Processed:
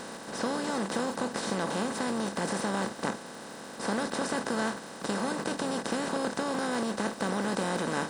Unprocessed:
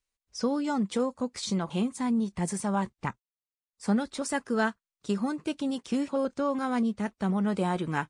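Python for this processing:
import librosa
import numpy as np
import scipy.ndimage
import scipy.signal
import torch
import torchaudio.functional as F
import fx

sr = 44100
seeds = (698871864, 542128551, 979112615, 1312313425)

y = fx.bin_compress(x, sr, power=0.2)
y = fx.dmg_crackle(y, sr, seeds[0], per_s=150.0, level_db=-32.0)
y = fx.low_shelf(y, sr, hz=110.0, db=-9.5)
y = F.gain(torch.from_numpy(y), -9.0).numpy()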